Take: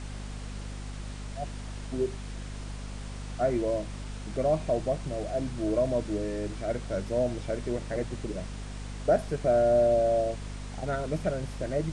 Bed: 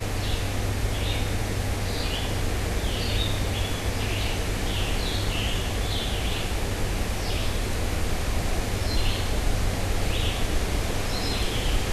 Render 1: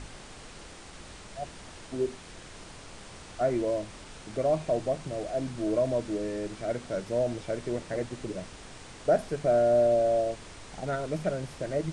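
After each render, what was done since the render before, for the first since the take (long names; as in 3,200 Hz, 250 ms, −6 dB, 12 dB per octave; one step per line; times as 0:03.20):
mains-hum notches 50/100/150/200/250 Hz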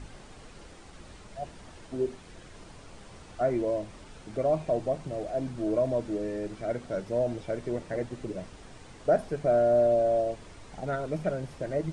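broadband denoise 7 dB, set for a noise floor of −47 dBFS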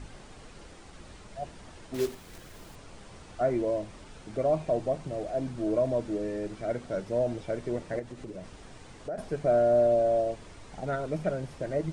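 0:01.94–0:02.76: one scale factor per block 3 bits
0:07.99–0:09.18: downward compressor 2.5 to 1, threshold −38 dBFS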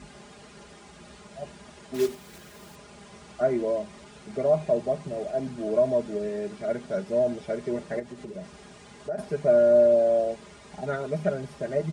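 high-pass filter 65 Hz 24 dB per octave
comb filter 4.9 ms, depth 84%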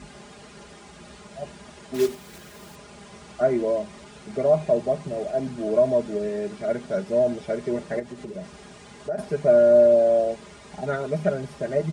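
level +3 dB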